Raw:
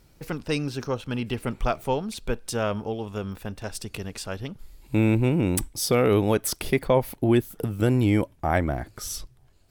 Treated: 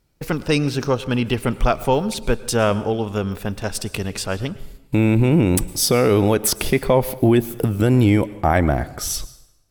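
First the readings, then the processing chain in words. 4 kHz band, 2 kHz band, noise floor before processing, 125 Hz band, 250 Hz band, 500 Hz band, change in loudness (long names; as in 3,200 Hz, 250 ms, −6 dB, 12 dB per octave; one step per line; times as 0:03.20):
+8.0 dB, +6.0 dB, −57 dBFS, +6.5 dB, +6.0 dB, +6.0 dB, +6.5 dB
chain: noise gate −44 dBFS, range −17 dB
brickwall limiter −14.5 dBFS, peak gain reduction 5 dB
dense smooth reverb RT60 0.89 s, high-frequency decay 0.85×, pre-delay 95 ms, DRR 17.5 dB
level +8.5 dB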